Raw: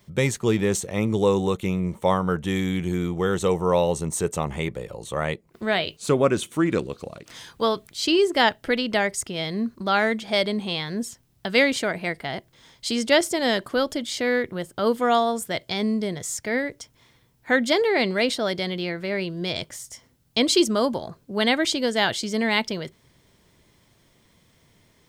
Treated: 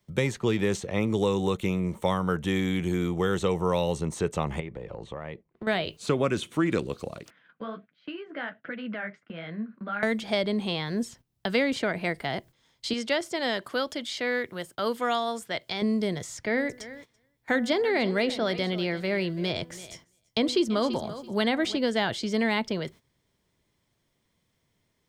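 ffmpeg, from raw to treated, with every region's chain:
-filter_complex "[0:a]asettb=1/sr,asplit=3[a][b][c];[a]atrim=end=4.604[d];[b]atrim=start=4.6:end=5.67,asetpts=PTS-STARTPTS,afade=t=in:d=0.004:c=qsin,afade=t=out:st=1.066:d=0.004:c=qsin,lowpass=2.4k,equalizer=f=1.4k:w=5:g=-4.5,acompressor=threshold=-32dB:ratio=12:attack=3.2:release=140:knee=1:detection=peak[e];[c]atrim=start=5.666[f];[d][e]acrossfade=d=0.004:c1=hsin:c2=qsin[g];[g][f]acrossfade=d=0.004:c1=qsin:c2=hsin,asettb=1/sr,asplit=3[h][i][j];[h]atrim=end=7.304[k];[i]atrim=start=7.3:end=10.03,asetpts=PTS-STARTPTS,afade=t=in:d=0.004:c=qsin,afade=t=out:st=2.726:d=0.004:c=qsin,acompressor=threshold=-27dB:ratio=4:attack=3.2:release=140:knee=1:detection=peak,flanger=delay=4.7:depth=9.9:regen=-29:speed=1.4:shape=triangular,highpass=f=170:w=0.5412,highpass=f=170:w=1.3066,equalizer=f=200:t=q:w=4:g=4,equalizer=f=380:t=q:w=4:g=-10,equalizer=f=900:t=q:w=4:g=-9,equalizer=f=1.5k:t=q:w=4:g=8,lowpass=f=2.5k:w=0.5412,lowpass=f=2.5k:w=1.3066[l];[j]atrim=start=10.026[m];[k][l]acrossfade=d=0.004:c1=hsin:c2=qsin[n];[n][m]acrossfade=d=0.004:c1=qsin:c2=hsin,asettb=1/sr,asplit=3[o][p][q];[o]atrim=end=12.934[r];[p]atrim=start=12.93:end=15.82,asetpts=PTS-STARTPTS,afade=t=in:d=0.004:c=qsin,afade=t=out:st=2.886:d=0.004:c=qsin,highpass=f=160:p=1,equalizer=f=260:w=0.33:g=-6[s];[q]atrim=start=15.816[t];[r][s]acrossfade=d=0.004:c1=hsin:c2=qsin[u];[u][t]acrossfade=d=0.004:c1=qsin:c2=hsin,asettb=1/sr,asplit=3[v][w][x];[v]atrim=end=16.364[y];[w]atrim=start=16.36:end=21.77,asetpts=PTS-STARTPTS,afade=t=in:d=0.004:c=qsin,afade=t=out:st=5.406:d=0.004:c=qsin,bandreject=f=248.1:t=h:w=4,bandreject=f=496.2:t=h:w=4,bandreject=f=744.3:t=h:w=4,bandreject=f=992.4:t=h:w=4,bandreject=f=1.2405k:t=h:w=4,bandreject=f=1.4886k:t=h:w=4,bandreject=f=1.7367k:t=h:w=4,bandreject=f=1.9848k:t=h:w=4,aecho=1:1:334|668:0.133|0.0227,atrim=end_sample=238581[z];[x]atrim=start=21.766[aa];[y][z]acrossfade=d=0.004:c1=hsin:c2=qsin[ab];[ab][aa]acrossfade=d=0.004:c1=qsin:c2=hsin,agate=range=-14dB:threshold=-46dB:ratio=16:detection=peak,acrossover=split=260|1600|5000[ac][ad][ae][af];[ac]acompressor=threshold=-28dB:ratio=4[ag];[ad]acompressor=threshold=-25dB:ratio=4[ah];[ae]acompressor=threshold=-32dB:ratio=4[ai];[af]acompressor=threshold=-49dB:ratio=4[aj];[ag][ah][ai][aj]amix=inputs=4:normalize=0"

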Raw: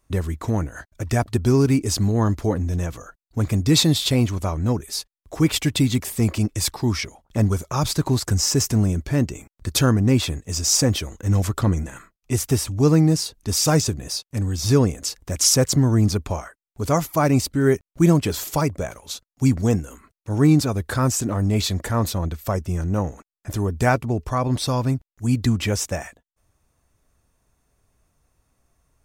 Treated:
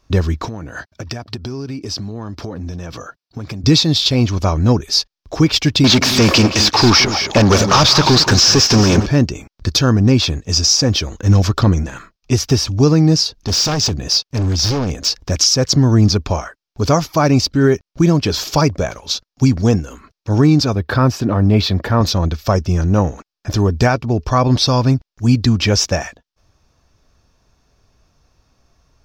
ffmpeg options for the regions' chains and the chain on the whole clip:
-filter_complex "[0:a]asettb=1/sr,asplit=3[a][b][c];[a]atrim=end=0.454[d];[b]atrim=start=0.45:end=3.64,asetpts=PTS-STARTPTS,afade=t=in:d=0.004:c=qsin,afade=t=out:st=3.186:d=0.004:c=qsin,highpass=100,bandreject=f=6.6k:w=9.8,acompressor=threshold=-31dB:ratio=12:attack=3.2:release=140:knee=1:detection=peak[e];[c]atrim=start=3.636[f];[d][e]acrossfade=d=0.004:c1=hsin:c2=qsin[g];[g][f]acrossfade=d=0.004:c1=qsin:c2=hsin,asettb=1/sr,asplit=3[h][i][j];[h]atrim=end=5.844[k];[i]atrim=start=5.84:end=9.06,asetpts=PTS-STARTPTS,afade=t=in:d=0.004:c=qsin,afade=t=out:st=3.216:d=0.004:c=qsin,asplit=2[l][m];[m]highpass=f=720:p=1,volume=29dB,asoftclip=type=tanh:threshold=-8.5dB[n];[l][n]amix=inputs=2:normalize=0,lowpass=f=4.6k:p=1,volume=-6dB,aecho=1:1:172|219:0.211|0.266,atrim=end_sample=142002[o];[j]atrim=start=9.056[p];[k][o]acrossfade=d=0.004:c1=hsin:c2=qsin[q];[q][p]acrossfade=d=0.004:c1=qsin:c2=hsin,asettb=1/sr,asplit=3[r][s][t];[r]atrim=end=13.364[u];[s]atrim=start=13.36:end=15.18,asetpts=PTS-STARTPTS,afade=t=in:d=0.004:c=qsin,afade=t=out:st=1.816:d=0.004:c=qsin,acompressor=threshold=-19dB:ratio=10:attack=3.2:release=140:knee=1:detection=peak,aeval=exprs='0.0891*(abs(mod(val(0)/0.0891+3,4)-2)-1)':c=same[v];[t]atrim=start=15.176[w];[u][v]acrossfade=d=0.004:c1=hsin:c2=qsin[x];[x][w]acrossfade=d=0.004:c1=qsin:c2=hsin,asettb=1/sr,asplit=3[y][z][aa];[y]atrim=end=20.754[ab];[z]atrim=start=20.75:end=22.01,asetpts=PTS-STARTPTS,afade=t=in:d=0.004:c=qsin,afade=t=out:st=1.256:d=0.004:c=qsin,highpass=70,equalizer=f=6.6k:t=o:w=1.2:g=-14.5[ac];[aa]atrim=start=22.006[ad];[ab][ac]acrossfade=d=0.004:c1=hsin:c2=qsin[ae];[ae][ad]acrossfade=d=0.004:c1=qsin:c2=hsin,highshelf=f=6.9k:t=q:w=3:g=-10.5,bandreject=f=2k:w=13,alimiter=limit=-11.5dB:level=0:latency=1:release=388,volume=8.5dB"

